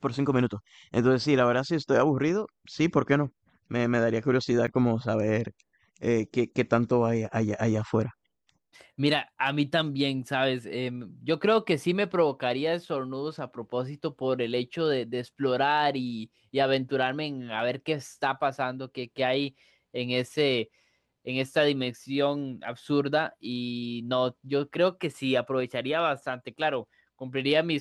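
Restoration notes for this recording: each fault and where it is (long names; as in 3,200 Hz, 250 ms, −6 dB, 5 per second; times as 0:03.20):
0:04.67–0:04.68: drop-out 7.1 ms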